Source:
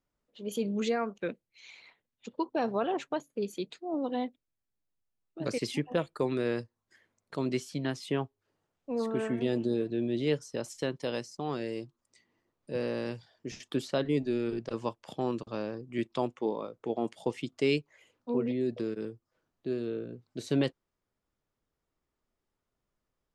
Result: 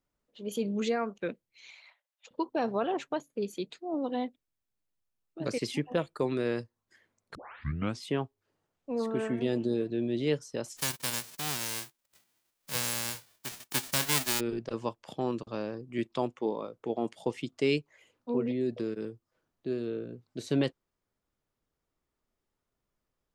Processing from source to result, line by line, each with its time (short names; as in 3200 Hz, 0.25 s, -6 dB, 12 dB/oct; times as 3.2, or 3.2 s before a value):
1.71–2.31 elliptic high-pass 570 Hz
7.35 tape start 0.66 s
10.76–14.39 spectral whitening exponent 0.1